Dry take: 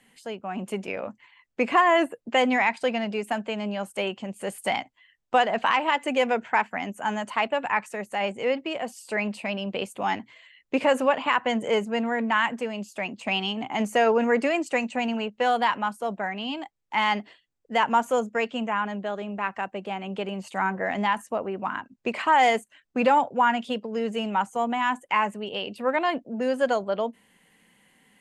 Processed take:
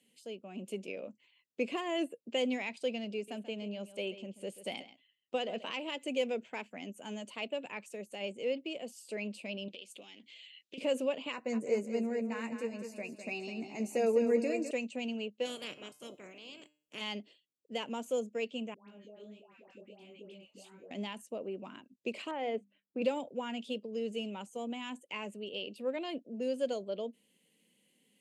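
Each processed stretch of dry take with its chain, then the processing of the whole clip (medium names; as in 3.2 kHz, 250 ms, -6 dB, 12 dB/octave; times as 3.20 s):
3.14–5.73 s: treble shelf 8 kHz -9 dB + delay 135 ms -14.5 dB
9.68–10.78 s: frequency weighting D + compression 5:1, threshold -37 dBFS + loudspeaker Doppler distortion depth 0.26 ms
11.32–14.71 s: Butterworth band-stop 3.2 kHz, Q 2.4 + doubling 13 ms -7 dB + feedback delay 204 ms, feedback 37%, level -8.5 dB
15.45–17.00 s: spectral peaks clipped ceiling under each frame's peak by 27 dB + peaking EQ 4.1 kHz -10.5 dB 0.81 oct + feedback comb 150 Hz, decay 0.44 s, mix 50%
18.74–20.91 s: compression 5:1, threshold -35 dBFS + chorus 1.5 Hz, delay 17.5 ms, depth 6.7 ms + phase dispersion highs, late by 145 ms, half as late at 1 kHz
22.31–23.02 s: low-pass 1.7 kHz + hum notches 50/100/150/200/250 Hz
whole clip: high-pass 200 Hz 12 dB/octave; high-order bell 1.2 kHz -15.5 dB; trim -7.5 dB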